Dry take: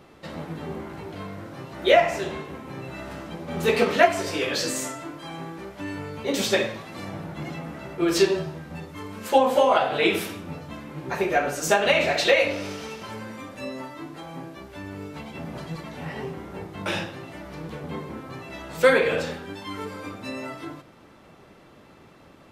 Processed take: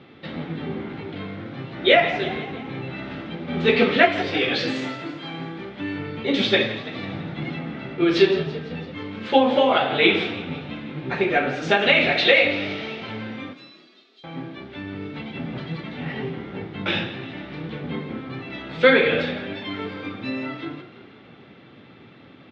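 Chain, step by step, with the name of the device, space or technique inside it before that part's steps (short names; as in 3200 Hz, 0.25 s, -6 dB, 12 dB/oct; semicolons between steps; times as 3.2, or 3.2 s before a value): 13.53–14.24 inverse Chebyshev high-pass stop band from 910 Hz, stop band 70 dB; high shelf 7400 Hz -5.5 dB; frequency-shifting delay pedal into a guitar cabinet (frequency-shifting echo 0.167 s, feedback 59%, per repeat +33 Hz, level -15 dB; speaker cabinet 100–4100 Hz, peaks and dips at 120 Hz +6 dB, 250 Hz +5 dB, 620 Hz -5 dB, 1000 Hz -7 dB, 2200 Hz +4 dB, 3500 Hz +7 dB); gain +3 dB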